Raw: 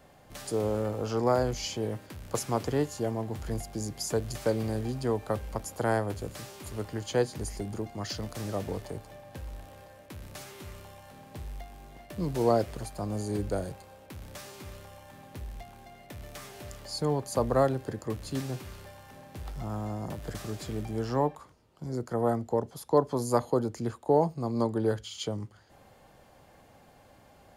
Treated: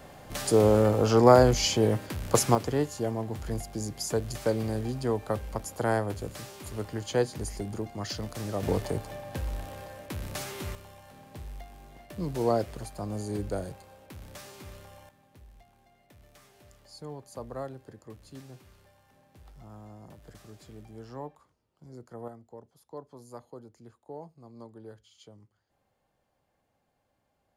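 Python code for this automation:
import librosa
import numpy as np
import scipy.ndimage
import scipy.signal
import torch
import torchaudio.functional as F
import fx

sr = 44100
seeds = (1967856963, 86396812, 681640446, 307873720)

y = fx.gain(x, sr, db=fx.steps((0.0, 8.5), (2.55, 0.5), (8.63, 7.5), (10.75, -1.5), (15.09, -13.0), (22.28, -19.0)))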